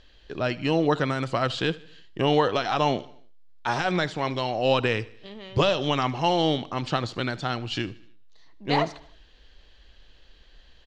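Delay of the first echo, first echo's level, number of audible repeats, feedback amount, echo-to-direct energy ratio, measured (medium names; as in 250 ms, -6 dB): 76 ms, -21.0 dB, 3, 51%, -19.5 dB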